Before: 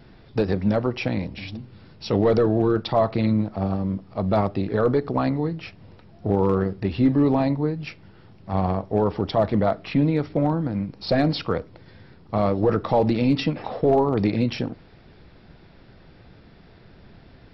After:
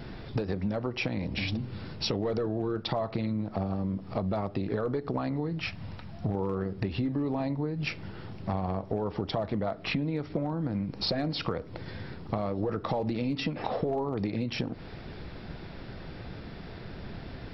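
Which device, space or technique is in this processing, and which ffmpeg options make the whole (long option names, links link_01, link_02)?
serial compression, peaks first: -filter_complex "[0:a]asettb=1/sr,asplit=3[link_01][link_02][link_03];[link_01]atrim=end=5.594[link_04];[link_02]atrim=start=5.59:end=6.35,asetpts=PTS-STARTPTS,afade=type=in:duration=0.004:curve=qsin,afade=type=out:start_time=0.756:duration=0.004:curve=qsin,equalizer=frequency=410:width_type=o:width=1:gain=-10[link_05];[link_03]atrim=start=6.346[link_06];[link_04][link_05]acrossfade=duration=0.004:curve1=hsin:curve2=qsin[link_07];[link_07][link_06]acrossfade=duration=0.004:curve1=qsin:curve2=hsin,acompressor=threshold=-30dB:ratio=4,acompressor=threshold=-36dB:ratio=3,volume=7.5dB"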